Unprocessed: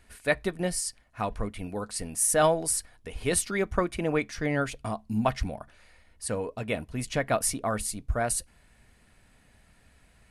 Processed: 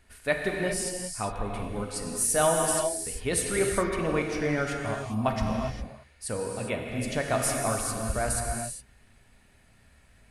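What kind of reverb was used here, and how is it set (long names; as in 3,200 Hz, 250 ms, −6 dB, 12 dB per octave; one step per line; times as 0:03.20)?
reverb whose tail is shaped and stops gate 430 ms flat, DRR 0.5 dB
level −2 dB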